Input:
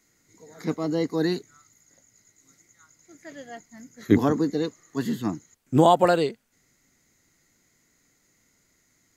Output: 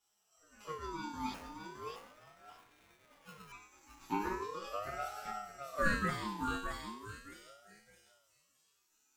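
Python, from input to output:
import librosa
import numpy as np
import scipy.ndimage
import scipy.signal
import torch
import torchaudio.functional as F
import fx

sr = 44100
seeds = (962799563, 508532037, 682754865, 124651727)

y = scipy.signal.sosfilt(scipy.signal.bessel(2, 360.0, 'highpass', norm='mag', fs=sr, output='sos'), x)
y = fx.high_shelf(y, sr, hz=11000.0, db=6.0)
y = fx.resonator_bank(y, sr, root=56, chord='sus4', decay_s=0.64)
y = fx.echo_wet_highpass(y, sr, ms=615, feedback_pct=38, hz=4300.0, wet_db=-4.5)
y = fx.sample_hold(y, sr, seeds[0], rate_hz=4000.0, jitter_pct=0, at=(1.34, 3.52))
y = fx.echo_feedback(y, sr, ms=617, feedback_pct=23, wet_db=-5.5)
y = fx.ring_lfo(y, sr, carrier_hz=810.0, swing_pct=30, hz=0.38)
y = y * 10.0 ** (11.5 / 20.0)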